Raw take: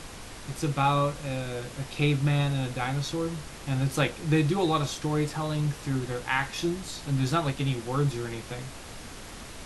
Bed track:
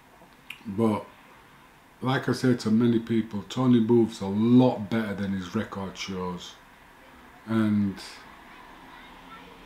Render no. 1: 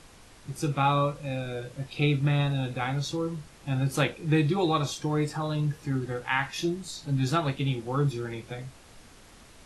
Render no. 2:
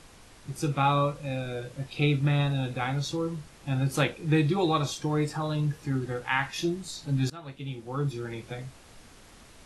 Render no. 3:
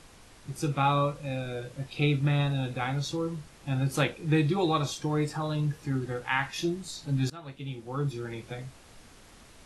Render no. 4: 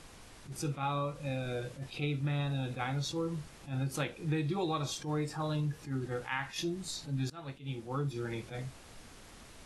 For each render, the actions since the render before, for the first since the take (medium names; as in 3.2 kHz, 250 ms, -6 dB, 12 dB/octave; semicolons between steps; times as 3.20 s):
noise print and reduce 10 dB
7.30–8.45 s: fade in linear, from -22 dB
trim -1 dB
compression 4:1, threshold -31 dBFS, peak gain reduction 9.5 dB; attacks held to a fixed rise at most 180 dB/s